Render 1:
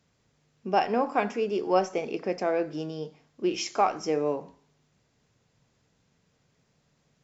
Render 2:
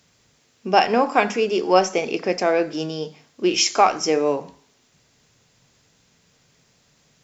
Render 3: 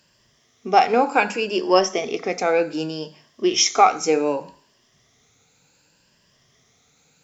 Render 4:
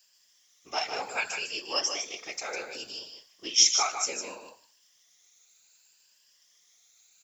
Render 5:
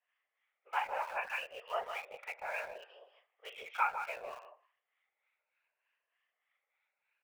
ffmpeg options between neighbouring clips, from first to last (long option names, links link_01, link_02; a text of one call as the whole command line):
ffmpeg -i in.wav -af "highshelf=frequency=2000:gain=9,bandreject=frequency=50:width_type=h:width=6,bandreject=frequency=100:width_type=h:width=6,bandreject=frequency=150:width_type=h:width=6,bandreject=frequency=200:width_type=h:width=6,volume=6.5dB" out.wav
ffmpeg -i in.wav -af "afftfilt=real='re*pow(10,10/40*sin(2*PI*(1.3*log(max(b,1)*sr/1024/100)/log(2)-(0.66)*(pts-256)/sr)))':imag='im*pow(10,10/40*sin(2*PI*(1.3*log(max(b,1)*sr/1024/100)/log(2)-(0.66)*(pts-256)/sr)))':win_size=1024:overlap=0.75,lowshelf=frequency=320:gain=-3,volume=-1dB" out.wav
ffmpeg -i in.wav -af "aderivative,afftfilt=real='hypot(re,im)*cos(2*PI*random(0))':imag='hypot(re,im)*sin(2*PI*random(1))':win_size=512:overlap=0.75,aecho=1:1:153:0.447,volume=7.5dB" out.wav
ffmpeg -i in.wav -filter_complex "[0:a]highpass=frequency=350:width_type=q:width=0.5412,highpass=frequency=350:width_type=q:width=1.307,lowpass=frequency=2300:width_type=q:width=0.5176,lowpass=frequency=2300:width_type=q:width=0.7071,lowpass=frequency=2300:width_type=q:width=1.932,afreqshift=110,asplit=2[link_01][link_02];[link_02]aeval=exprs='val(0)*gte(abs(val(0)),0.00944)':channel_layout=same,volume=-7dB[link_03];[link_01][link_03]amix=inputs=2:normalize=0,acrossover=split=860[link_04][link_05];[link_04]aeval=exprs='val(0)*(1-0.7/2+0.7/2*cos(2*PI*3.3*n/s))':channel_layout=same[link_06];[link_05]aeval=exprs='val(0)*(1-0.7/2-0.7/2*cos(2*PI*3.3*n/s))':channel_layout=same[link_07];[link_06][link_07]amix=inputs=2:normalize=0,volume=-1.5dB" out.wav